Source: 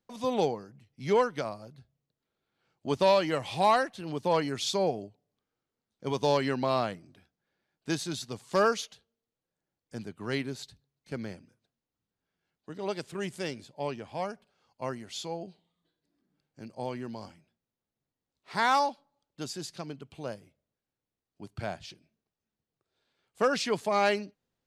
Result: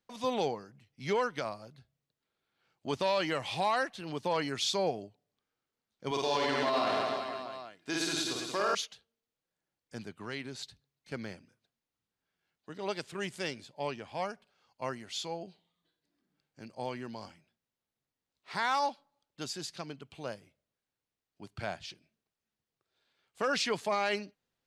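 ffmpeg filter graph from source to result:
ffmpeg -i in.wav -filter_complex "[0:a]asettb=1/sr,asplit=3[link_01][link_02][link_03];[link_01]atrim=end=6.114[link_04];[link_02]atrim=start=6.11:end=8.75,asetpts=PTS-STARTPTS,afade=type=in:duration=0.004:curve=qsin,afade=type=out:start_time=2.636:duration=0.004:curve=qsin,highpass=frequency=220:poles=1,aecho=1:1:2.9:0.33,atrim=end_sample=116424,aecho=1:1:50|110|182|268.4|372.1|496.5|645.8|825:0.794|0.631|0.501|0.398|0.316|0.251|0.2|0.158,atrim=end_sample=116424[link_05];[link_03]atrim=start=8.746[link_06];[link_04][link_05]acrossfade=duration=0.004:curve1=hsin:curve2=qsin[link_07];[link_07][link_06]acrossfade=duration=0.004:curve1=qsin:curve2=hsin,asettb=1/sr,asplit=3[link_08][link_09][link_10];[link_08]atrim=end=10.204[link_11];[link_09]atrim=start=10.2:end=10.62,asetpts=PTS-STARTPTS,afade=type=in:duration=0.004:curve=qsin,afade=type=out:start_time=0.416:duration=0.004:curve=qsin,lowpass=frequency=11000:width=0.5412,lowpass=frequency=11000:width=1.3066,acompressor=threshold=-35dB:ratio=2.5:attack=3.2:release=140:knee=1:detection=peak[link_12];[link_10]atrim=start=10.616[link_13];[link_11][link_12]acrossfade=duration=0.004:curve1=hsin:curve2=qsin[link_14];[link_14][link_13]acrossfade=duration=0.004:curve1=qsin:curve2=hsin,equalizer=frequency=2600:width=0.31:gain=6.5,alimiter=limit=-16.5dB:level=0:latency=1:release=20,volume=-4.5dB" out.wav

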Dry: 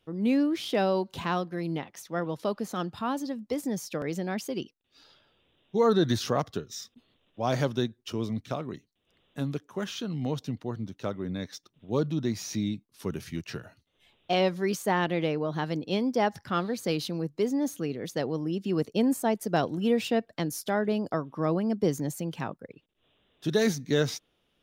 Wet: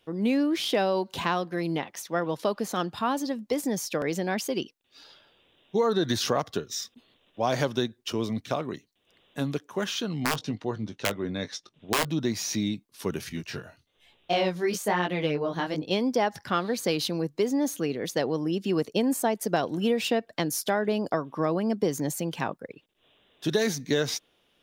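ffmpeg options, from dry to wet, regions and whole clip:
ffmpeg -i in.wav -filter_complex "[0:a]asettb=1/sr,asplit=3[link_01][link_02][link_03];[link_01]atrim=end=10.204[link_04];[link_02]atrim=start=10.2:end=12.05,asetpts=PTS-STARTPTS,afade=type=in:duration=0.004:curve=qsin,afade=type=out:start_time=1.846:duration=0.004:curve=qsin,lowpass=7400,aeval=exprs='(mod(11.2*val(0)+1,2)-1)/11.2':channel_layout=same,asplit=2[link_05][link_06];[link_06]adelay=19,volume=-11.5dB[link_07];[link_05][link_07]amix=inputs=2:normalize=0,atrim=end_sample=81585[link_08];[link_03]atrim=start=12.046[link_09];[link_04][link_08]acrossfade=duration=0.004:curve1=hsin:curve2=qsin[link_10];[link_10][link_09]acrossfade=duration=0.004:curve1=qsin:curve2=hsin,asettb=1/sr,asplit=3[link_11][link_12][link_13];[link_11]atrim=end=13.294[link_14];[link_12]atrim=start=13.29:end=15.91,asetpts=PTS-STARTPTS,afade=type=in:duration=0.004:curve=qsin,afade=type=out:start_time=2.616:duration=0.004:curve=qsin,flanger=delay=16:depth=7.4:speed=1.1,lowshelf=frequency=94:gain=8[link_15];[link_13]atrim=start=15.906[link_16];[link_14][link_15]acrossfade=duration=0.004:curve1=hsin:curve2=qsin[link_17];[link_17][link_16]acrossfade=duration=0.004:curve1=qsin:curve2=hsin,lowshelf=frequency=230:gain=-9,bandreject=frequency=1300:width=21,acompressor=threshold=-27dB:ratio=6,volume=6.5dB" out.wav

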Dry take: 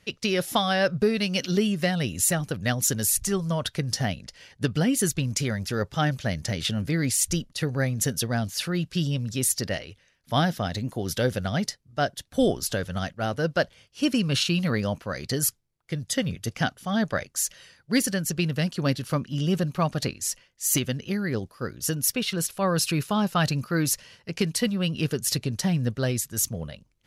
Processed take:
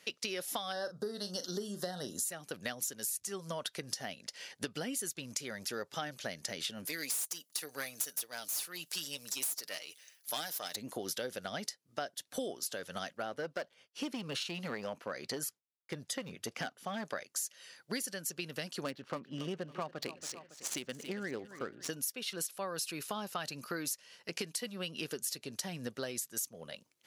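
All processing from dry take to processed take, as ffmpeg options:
ffmpeg -i in.wav -filter_complex "[0:a]asettb=1/sr,asplit=3[link_01][link_02][link_03];[link_01]atrim=end=0.724[link_04];[link_02]atrim=start=0.72:end=2.25,asetpts=PTS-STARTPTS,afade=type=in:duration=0.004:curve=qsin,afade=type=out:start_time=1.526:duration=0.004:curve=qsin,asuperstop=centerf=2400:order=4:qfactor=1.2,asplit=2[link_05][link_06];[link_06]adelay=39,volume=-11.5dB[link_07];[link_05][link_07]amix=inputs=2:normalize=0,atrim=end_sample=67473[link_08];[link_03]atrim=start=2.246[link_09];[link_04][link_08]acrossfade=duration=0.004:curve1=hsin:curve2=qsin[link_10];[link_10][link_09]acrossfade=duration=0.004:curve1=qsin:curve2=hsin,asettb=1/sr,asplit=3[link_11][link_12][link_13];[link_11]atrim=end=6.854[link_14];[link_12]atrim=start=6.85:end=10.76,asetpts=PTS-STARTPTS,afade=type=in:duration=0.004:curve=qsin,afade=type=out:start_time=3.906:duration=0.004:curve=qsin,aemphasis=mode=production:type=riaa,aeval=exprs='(tanh(8.91*val(0)+0.7)-tanh(0.7))/8.91':channel_layout=same,aecho=1:1:6.6:0.34,atrim=end_sample=172431[link_15];[link_13]atrim=start=10.756[link_16];[link_14][link_15]acrossfade=duration=0.004:curve1=hsin:curve2=qsin[link_17];[link_17][link_16]acrossfade=duration=0.004:curve1=qsin:curve2=hsin,asettb=1/sr,asplit=3[link_18][link_19][link_20];[link_18]atrim=end=13.224[link_21];[link_19]atrim=start=13.22:end=17.05,asetpts=PTS-STARTPTS,afade=type=in:duration=0.004:curve=qsin,afade=type=out:start_time=3.826:duration=0.004:curve=qsin,agate=range=-33dB:threshold=-53dB:ratio=3:release=100:detection=peak,highshelf=frequency=3600:gain=-10.5,aeval=exprs='clip(val(0),-1,0.0794)':channel_layout=same[link_22];[link_20]atrim=start=17.046[link_23];[link_21][link_22]acrossfade=duration=0.004:curve1=hsin:curve2=qsin[link_24];[link_24][link_23]acrossfade=duration=0.004:curve1=qsin:curve2=hsin,asettb=1/sr,asplit=3[link_25][link_26][link_27];[link_25]atrim=end=18.844[link_28];[link_26]atrim=start=18.84:end=21.9,asetpts=PTS-STARTPTS,afade=type=in:duration=0.004:curve=qsin,afade=type=out:start_time=3.056:duration=0.004:curve=qsin,highshelf=frequency=10000:gain=-4.5,adynamicsmooth=sensitivity=3.5:basefreq=1500,aecho=1:1:278|556|834:0.126|0.0529|0.0222,atrim=end_sample=134946[link_29];[link_27]atrim=start=21.896[link_30];[link_28][link_29]acrossfade=duration=0.004:curve1=hsin:curve2=qsin[link_31];[link_31][link_30]acrossfade=duration=0.004:curve1=qsin:curve2=hsin,highpass=320,highshelf=frequency=4500:gain=6,acompressor=threshold=-36dB:ratio=6" out.wav

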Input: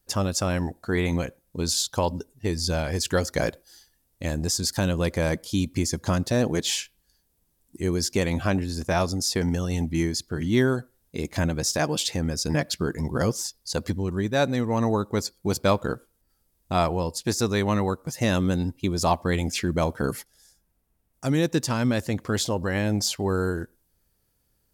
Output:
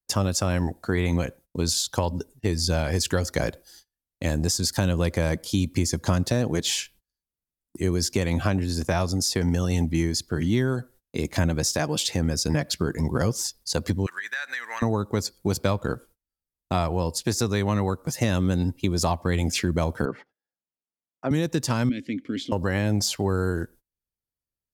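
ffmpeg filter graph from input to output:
ffmpeg -i in.wav -filter_complex "[0:a]asettb=1/sr,asplit=3[link_01][link_02][link_03];[link_01]atrim=end=14.064[link_04];[link_02]atrim=start=14.06:end=14.82,asetpts=PTS-STARTPTS,afade=type=in:duration=0.004:curve=qsin,afade=type=out:start_time=0.756:duration=0.004:curve=qsin,highpass=frequency=1700:width_type=q:width=5.4,acompressor=threshold=-30dB:ratio=10:attack=3.2:release=140:knee=1:detection=peak[link_05];[link_03]atrim=start=14.816[link_06];[link_04][link_05]acrossfade=duration=0.004:curve1=hsin:curve2=qsin[link_07];[link_07][link_06]acrossfade=duration=0.004:curve1=qsin:curve2=hsin,asettb=1/sr,asplit=3[link_08][link_09][link_10];[link_08]atrim=end=20.054[link_11];[link_09]atrim=start=20.05:end=21.31,asetpts=PTS-STARTPTS,afade=type=in:duration=0.004:curve=qsin,afade=type=out:start_time=1.256:duration=0.004:curve=qsin,highpass=230,lowpass=2000,aemphasis=mode=reproduction:type=50fm[link_12];[link_10]atrim=start=21.306[link_13];[link_11][link_12]acrossfade=duration=0.004:curve1=hsin:curve2=qsin[link_14];[link_14][link_13]acrossfade=duration=0.004:curve1=qsin:curve2=hsin,asettb=1/sr,asplit=3[link_15][link_16][link_17];[link_15]atrim=end=21.894[link_18];[link_16]atrim=start=21.89:end=22.52,asetpts=PTS-STARTPTS,afade=type=in:duration=0.004:curve=qsin,afade=type=out:start_time=0.626:duration=0.004:curve=qsin,asplit=3[link_19][link_20][link_21];[link_19]bandpass=frequency=270:width_type=q:width=8,volume=0dB[link_22];[link_20]bandpass=frequency=2290:width_type=q:width=8,volume=-6dB[link_23];[link_21]bandpass=frequency=3010:width_type=q:width=8,volume=-9dB[link_24];[link_22][link_23][link_24]amix=inputs=3:normalize=0,acontrast=48[link_25];[link_17]atrim=start=22.516[link_26];[link_18][link_25]acrossfade=duration=0.004:curve1=hsin:curve2=qsin[link_27];[link_27][link_26]acrossfade=duration=0.004:curve1=qsin:curve2=hsin,agate=range=-27dB:threshold=-50dB:ratio=16:detection=peak,acrossover=split=130[link_28][link_29];[link_29]acompressor=threshold=-25dB:ratio=6[link_30];[link_28][link_30]amix=inputs=2:normalize=0,volume=3.5dB" out.wav

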